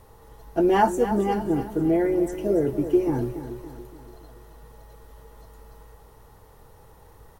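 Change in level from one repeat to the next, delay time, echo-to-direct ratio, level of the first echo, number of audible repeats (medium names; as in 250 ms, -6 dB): -6.5 dB, 285 ms, -10.0 dB, -11.0 dB, 4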